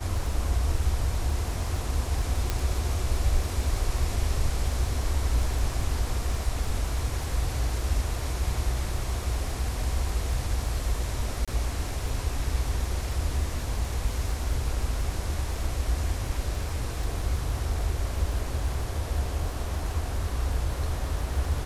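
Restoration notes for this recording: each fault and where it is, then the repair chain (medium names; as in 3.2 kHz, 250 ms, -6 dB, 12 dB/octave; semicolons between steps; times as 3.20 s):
crackle 28 per s -34 dBFS
2.50 s: pop -12 dBFS
11.45–11.48 s: dropout 26 ms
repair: de-click; interpolate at 11.45 s, 26 ms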